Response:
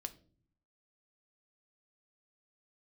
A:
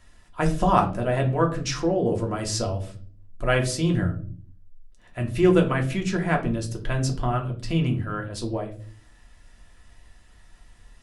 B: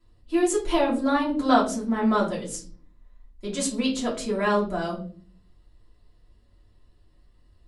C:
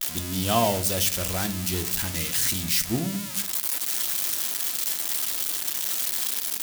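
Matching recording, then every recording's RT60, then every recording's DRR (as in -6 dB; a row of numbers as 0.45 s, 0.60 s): C; 0.45 s, 0.45 s, no single decay rate; 1.0 dB, -5.5 dB, 8.0 dB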